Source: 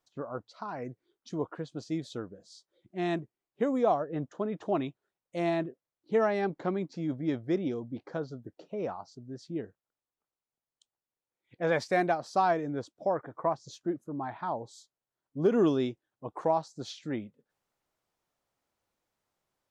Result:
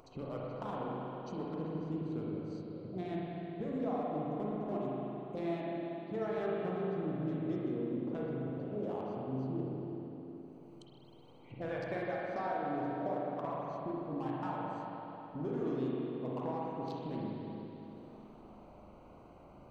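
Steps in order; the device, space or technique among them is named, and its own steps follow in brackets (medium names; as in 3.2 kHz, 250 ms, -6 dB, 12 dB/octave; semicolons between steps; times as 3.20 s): local Wiener filter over 25 samples; 3.01–3.63 s: bass shelf 450 Hz +7.5 dB; upward and downward compression (upward compressor, threshold -28 dBFS; compression 5:1, threshold -31 dBFS, peak gain reduction 10.5 dB); spring tank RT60 3.8 s, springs 38/53 ms, chirp 25 ms, DRR -5.5 dB; trim -7.5 dB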